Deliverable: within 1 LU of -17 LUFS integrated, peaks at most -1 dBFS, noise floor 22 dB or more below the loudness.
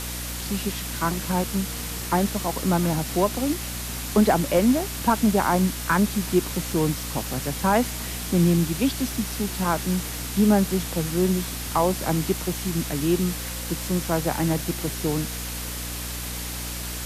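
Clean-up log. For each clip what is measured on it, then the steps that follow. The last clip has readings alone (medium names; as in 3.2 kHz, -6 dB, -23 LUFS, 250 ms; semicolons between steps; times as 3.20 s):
hum 60 Hz; highest harmonic 300 Hz; hum level -33 dBFS; noise floor -32 dBFS; noise floor target -47 dBFS; loudness -24.5 LUFS; peak level -8.0 dBFS; loudness target -17.0 LUFS
-> hum notches 60/120/180/240/300 Hz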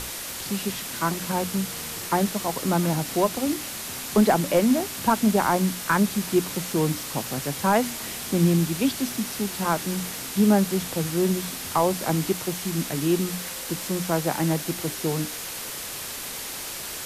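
hum not found; noise floor -34 dBFS; noise floor target -47 dBFS
-> noise reduction 13 dB, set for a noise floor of -34 dBFS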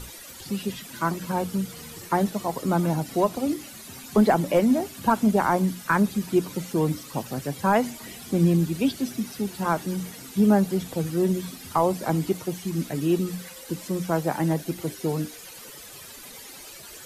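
noise floor -43 dBFS; noise floor target -48 dBFS
-> noise reduction 6 dB, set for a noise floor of -43 dBFS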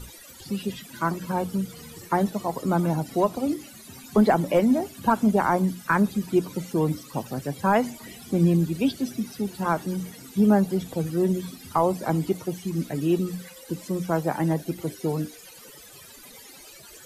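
noise floor -47 dBFS; noise floor target -48 dBFS
-> noise reduction 6 dB, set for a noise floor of -47 dBFS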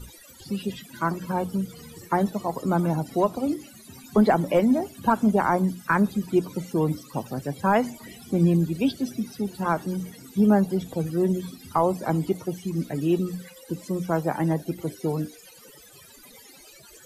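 noise floor -50 dBFS; loudness -25.5 LUFS; peak level -8.5 dBFS; loudness target -17.0 LUFS
-> trim +8.5 dB; peak limiter -1 dBFS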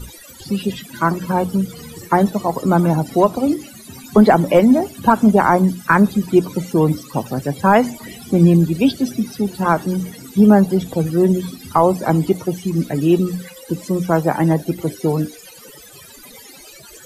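loudness -17.0 LUFS; peak level -1.0 dBFS; noise floor -41 dBFS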